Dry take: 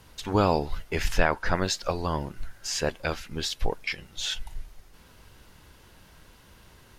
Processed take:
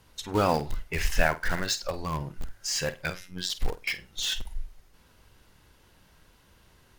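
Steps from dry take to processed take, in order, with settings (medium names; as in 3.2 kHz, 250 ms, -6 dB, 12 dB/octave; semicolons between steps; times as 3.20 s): spectral noise reduction 8 dB; 3.10–3.50 s: robot voice 91.2 Hz; in parallel at -11 dB: integer overflow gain 25 dB; on the sum: flutter echo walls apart 8.5 m, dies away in 0.22 s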